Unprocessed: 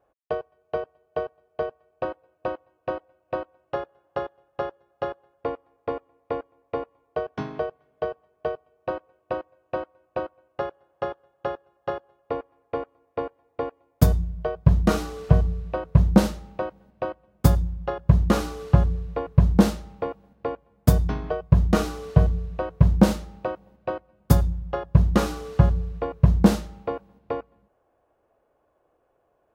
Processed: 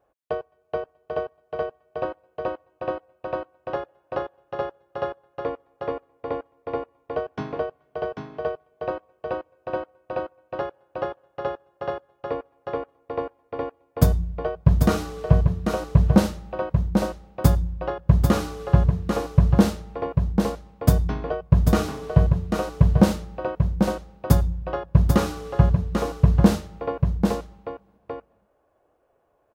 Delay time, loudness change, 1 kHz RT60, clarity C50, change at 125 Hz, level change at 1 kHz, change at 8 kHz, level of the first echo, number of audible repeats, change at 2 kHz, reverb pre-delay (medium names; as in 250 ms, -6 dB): 792 ms, +1.0 dB, no reverb, no reverb, +1.0 dB, +1.0 dB, +1.0 dB, -5.0 dB, 1, +1.0 dB, no reverb